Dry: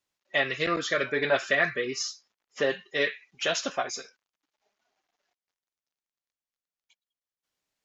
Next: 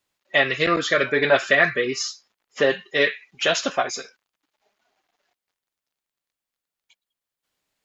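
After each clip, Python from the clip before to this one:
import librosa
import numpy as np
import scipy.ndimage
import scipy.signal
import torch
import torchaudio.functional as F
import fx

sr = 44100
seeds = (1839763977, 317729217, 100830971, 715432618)

y = fx.peak_eq(x, sr, hz=5800.0, db=-4.0, octaves=0.42)
y = y * librosa.db_to_amplitude(7.0)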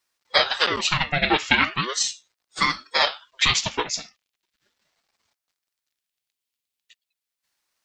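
y = fx.high_shelf_res(x, sr, hz=2100.0, db=7.0, q=1.5)
y = fx.transient(y, sr, attack_db=2, sustain_db=-2)
y = fx.ring_lfo(y, sr, carrier_hz=910.0, swing_pct=75, hz=0.38)
y = y * librosa.db_to_amplitude(-1.5)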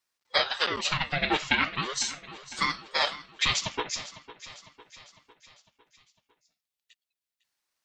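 y = fx.echo_feedback(x, sr, ms=503, feedback_pct=54, wet_db=-16.0)
y = y * librosa.db_to_amplitude(-6.0)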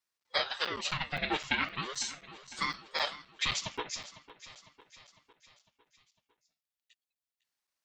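y = fx.buffer_crackle(x, sr, first_s=0.65, period_s=0.26, block=256, kind='zero')
y = y * librosa.db_to_amplitude(-6.0)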